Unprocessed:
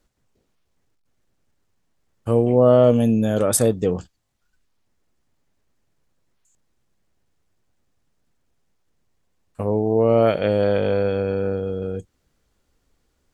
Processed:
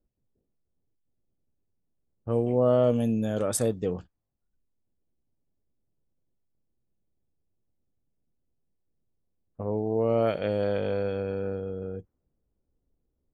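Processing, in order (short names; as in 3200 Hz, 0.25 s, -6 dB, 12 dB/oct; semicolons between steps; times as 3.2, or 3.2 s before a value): low-pass opened by the level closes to 490 Hz, open at -14 dBFS; gain -8 dB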